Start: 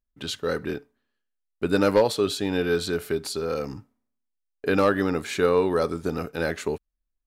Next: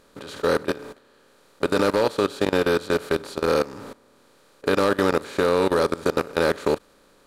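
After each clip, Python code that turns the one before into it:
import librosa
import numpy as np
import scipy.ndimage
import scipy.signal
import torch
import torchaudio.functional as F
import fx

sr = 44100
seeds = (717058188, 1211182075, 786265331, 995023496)

y = fx.bin_compress(x, sr, power=0.4)
y = fx.level_steps(y, sr, step_db=19)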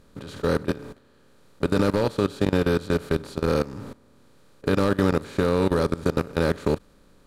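y = fx.bass_treble(x, sr, bass_db=14, treble_db=0)
y = F.gain(torch.from_numpy(y), -4.5).numpy()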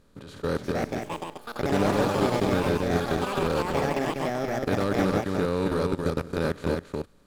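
y = x + 10.0 ** (-4.0 / 20.0) * np.pad(x, (int(273 * sr / 1000.0), 0))[:len(x)]
y = fx.echo_pitch(y, sr, ms=439, semitones=6, count=3, db_per_echo=-3.0)
y = F.gain(torch.from_numpy(y), -5.0).numpy()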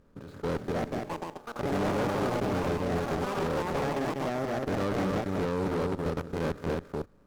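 y = scipy.signal.medfilt(x, 15)
y = fx.tube_stage(y, sr, drive_db=26.0, bias=0.45)
y = F.gain(torch.from_numpy(y), 1.5).numpy()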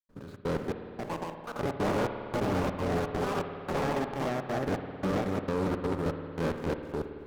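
y = fx.step_gate(x, sr, bpm=167, pattern='.xxx.xxx...xxxx', floor_db=-60.0, edge_ms=4.5)
y = fx.rev_spring(y, sr, rt60_s=2.5, pass_ms=(54,), chirp_ms=35, drr_db=7.0)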